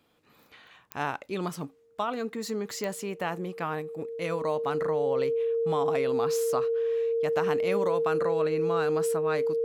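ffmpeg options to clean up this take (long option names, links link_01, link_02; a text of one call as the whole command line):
ffmpeg -i in.wav -af "adeclick=threshold=4,bandreject=frequency=460:width=30" out.wav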